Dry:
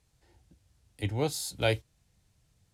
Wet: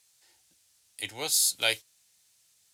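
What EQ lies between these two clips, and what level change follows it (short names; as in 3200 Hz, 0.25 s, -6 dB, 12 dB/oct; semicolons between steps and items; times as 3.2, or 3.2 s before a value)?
HPF 1500 Hz 6 dB/oct; high shelf 3100 Hz +12 dB; +2.5 dB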